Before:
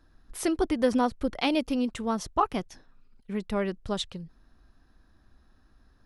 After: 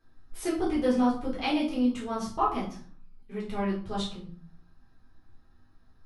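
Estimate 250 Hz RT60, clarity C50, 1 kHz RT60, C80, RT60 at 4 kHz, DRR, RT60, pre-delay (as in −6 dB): 0.65 s, 6.5 dB, 0.50 s, 11.0 dB, 0.35 s, −6.5 dB, 0.45 s, 3 ms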